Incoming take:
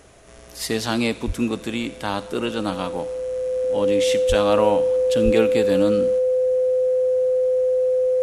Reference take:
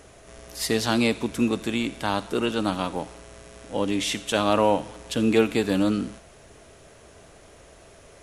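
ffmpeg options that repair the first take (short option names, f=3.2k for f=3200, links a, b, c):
-filter_complex "[0:a]bandreject=f=510:w=30,asplit=3[a][b][c];[a]afade=t=out:st=1.26:d=0.02[d];[b]highpass=f=140:w=0.5412,highpass=f=140:w=1.3066,afade=t=in:st=1.26:d=0.02,afade=t=out:st=1.38:d=0.02[e];[c]afade=t=in:st=1.38:d=0.02[f];[d][e][f]amix=inputs=3:normalize=0,asplit=3[g][h][i];[g]afade=t=out:st=4.28:d=0.02[j];[h]highpass=f=140:w=0.5412,highpass=f=140:w=1.3066,afade=t=in:st=4.28:d=0.02,afade=t=out:st=4.4:d=0.02[k];[i]afade=t=in:st=4.4:d=0.02[l];[j][k][l]amix=inputs=3:normalize=0,asplit=3[m][n][o];[m]afade=t=out:st=5.24:d=0.02[p];[n]highpass=f=140:w=0.5412,highpass=f=140:w=1.3066,afade=t=in:st=5.24:d=0.02,afade=t=out:st=5.36:d=0.02[q];[o]afade=t=in:st=5.36:d=0.02[r];[p][q][r]amix=inputs=3:normalize=0"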